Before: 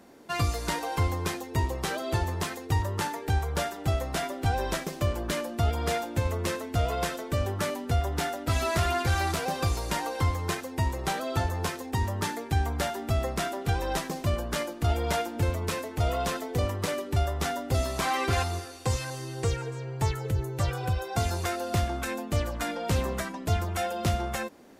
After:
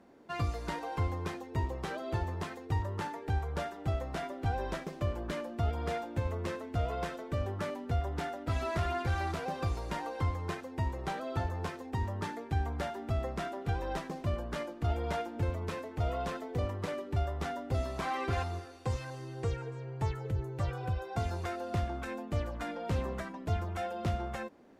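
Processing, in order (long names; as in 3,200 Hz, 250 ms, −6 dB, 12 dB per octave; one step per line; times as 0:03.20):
low-pass filter 2,000 Hz 6 dB per octave
level −5.5 dB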